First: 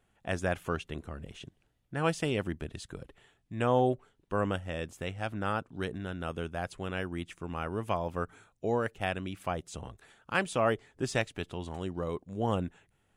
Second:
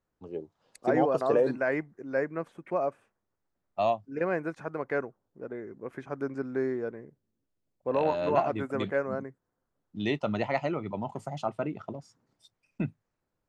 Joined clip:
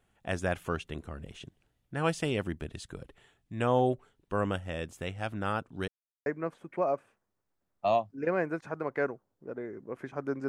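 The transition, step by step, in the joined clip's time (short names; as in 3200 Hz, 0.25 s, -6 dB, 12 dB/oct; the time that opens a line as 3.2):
first
5.88–6.26 mute
6.26 switch to second from 2.2 s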